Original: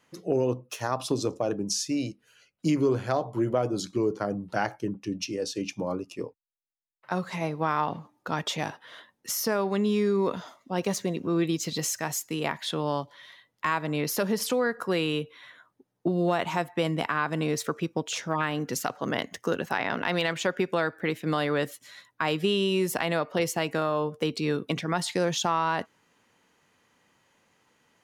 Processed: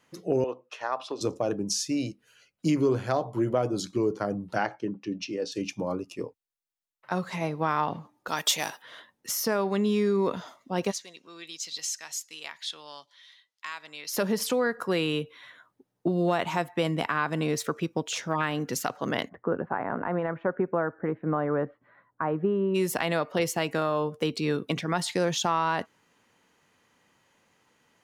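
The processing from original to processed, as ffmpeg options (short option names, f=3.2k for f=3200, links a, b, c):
-filter_complex "[0:a]asettb=1/sr,asplit=3[a][b][c];[a]atrim=end=0.444[d];[b]atrim=start=0.44:end=1.21,asetpts=PTS-STARTPTS,afade=t=in:d=0.004:c=qsin,afade=t=out:st=0.766:d=0.004:c=qsin,highpass=540,lowpass=3.2k[e];[c]atrim=start=1.206[f];[d][e]acrossfade=d=0.004:c1=hsin:c2=qsin[g];[g][f]acrossfade=d=0.004:c1=qsin:c2=hsin,asettb=1/sr,asplit=3[h][i][j];[h]atrim=end=4.584[k];[i]atrim=start=4.58:end=5.52,asetpts=PTS-STARTPTS,afade=t=in:d=0.004:c=qsin,afade=t=out:st=0.936:d=0.004:c=qsin,highpass=160,lowpass=4.6k[l];[j]atrim=start=5.516[m];[k][l]acrossfade=d=0.004:c1=hsin:c2=qsin[n];[n][m]acrossfade=d=0.004:c1=qsin:c2=hsin,asettb=1/sr,asplit=3[o][p][q];[o]atrim=end=8.284[r];[p]atrim=start=8.28:end=8.82,asetpts=PTS-STARTPTS,afade=t=in:d=0.004:c=qsin,afade=t=out:st=0.536:d=0.004:c=qsin,aemphasis=mode=production:type=riaa[s];[q]atrim=start=8.816[t];[r][s]acrossfade=d=0.004:c1=hsin:c2=qsin[u];[u][t]acrossfade=d=0.004:c1=qsin:c2=hsin,asplit=3[v][w][x];[v]afade=t=out:st=10.9:d=0.02[y];[w]bandpass=f=4.9k:t=q:w=0.98,afade=t=in:st=10.9:d=0.02,afade=t=out:st=14.12:d=0.02[z];[x]afade=t=in:st=14.12:d=0.02[aa];[y][z][aa]amix=inputs=3:normalize=0,asplit=3[ab][ac][ad];[ab]afade=t=out:st=19.28:d=0.02[ae];[ac]lowpass=f=1.4k:w=0.5412,lowpass=f=1.4k:w=1.3066,afade=t=in:st=19.28:d=0.02,afade=t=out:st=22.74:d=0.02[af];[ad]afade=t=in:st=22.74:d=0.02[ag];[ae][af][ag]amix=inputs=3:normalize=0"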